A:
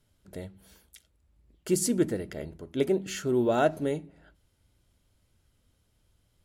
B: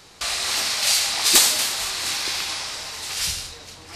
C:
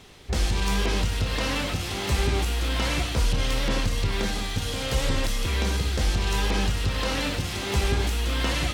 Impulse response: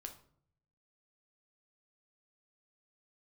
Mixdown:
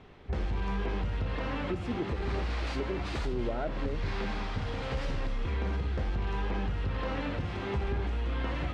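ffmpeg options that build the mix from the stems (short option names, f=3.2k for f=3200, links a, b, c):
-filter_complex "[0:a]volume=-6dB,asplit=2[a][b];[1:a]adelay=1800,volume=-3.5dB,asplit=2[c][d];[d]volume=-11dB[e];[2:a]bandreject=f=53.22:t=h:w=4,bandreject=f=106.44:t=h:w=4,bandreject=f=159.66:t=h:w=4,bandreject=f=212.88:t=h:w=4,bandreject=f=266.1:t=h:w=4,bandreject=f=319.32:t=h:w=4,bandreject=f=372.54:t=h:w=4,bandreject=f=425.76:t=h:w=4,bandreject=f=478.98:t=h:w=4,bandreject=f=532.2:t=h:w=4,bandreject=f=585.42:t=h:w=4,bandreject=f=638.64:t=h:w=4,bandreject=f=691.86:t=h:w=4,bandreject=f=745.08:t=h:w=4,bandreject=f=798.3:t=h:w=4,bandreject=f=851.52:t=h:w=4,bandreject=f=904.74:t=h:w=4,bandreject=f=957.96:t=h:w=4,bandreject=f=1.01118k:t=h:w=4,bandreject=f=1.0644k:t=h:w=4,bandreject=f=1.11762k:t=h:w=4,bandreject=f=1.17084k:t=h:w=4,bandreject=f=1.22406k:t=h:w=4,bandreject=f=1.27728k:t=h:w=4,bandreject=f=1.3305k:t=h:w=4,bandreject=f=1.38372k:t=h:w=4,bandreject=f=1.43694k:t=h:w=4,bandreject=f=1.49016k:t=h:w=4,bandreject=f=1.54338k:t=h:w=4,bandreject=f=1.5966k:t=h:w=4,bandreject=f=1.64982k:t=h:w=4,bandreject=f=1.70304k:t=h:w=4,bandreject=f=1.75626k:t=h:w=4,bandreject=f=1.80948k:t=h:w=4,bandreject=f=1.8627k:t=h:w=4,bandreject=f=1.91592k:t=h:w=4,bandreject=f=1.96914k:t=h:w=4,bandreject=f=2.02236k:t=h:w=4,bandreject=f=2.07558k:t=h:w=4,crystalizer=i=0.5:c=0,volume=-1.5dB[f];[b]apad=whole_len=253844[g];[c][g]sidechaincompress=threshold=-47dB:ratio=8:attack=8.3:release=115[h];[h][f]amix=inputs=2:normalize=0,asoftclip=type=tanh:threshold=-17.5dB,acompressor=threshold=-27dB:ratio=6,volume=0dB[i];[3:a]atrim=start_sample=2205[j];[e][j]afir=irnorm=-1:irlink=0[k];[a][i][k]amix=inputs=3:normalize=0,lowpass=1.7k,alimiter=limit=-23dB:level=0:latency=1:release=203"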